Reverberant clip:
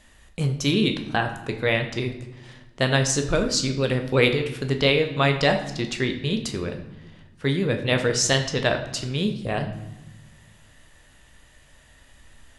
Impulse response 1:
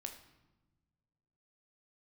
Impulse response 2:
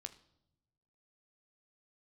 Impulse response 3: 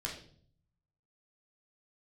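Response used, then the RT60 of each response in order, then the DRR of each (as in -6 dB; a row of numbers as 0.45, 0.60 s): 1; not exponential, not exponential, 0.55 s; 4.5, 8.5, -3.5 dB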